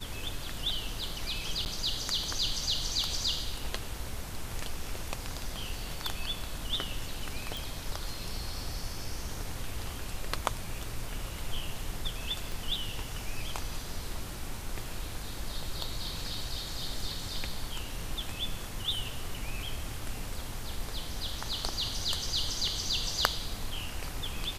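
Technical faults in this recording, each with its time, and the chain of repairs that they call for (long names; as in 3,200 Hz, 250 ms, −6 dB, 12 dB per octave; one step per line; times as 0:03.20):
0:01.65–0:01.66: drop-out 9.8 ms
0:07.57: click
0:12.52: click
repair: click removal
repair the gap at 0:01.65, 9.8 ms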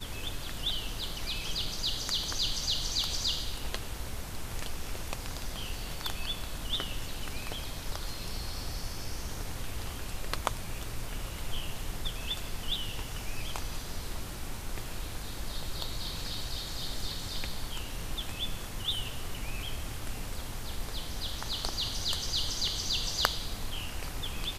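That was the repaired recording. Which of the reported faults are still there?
0:12.52: click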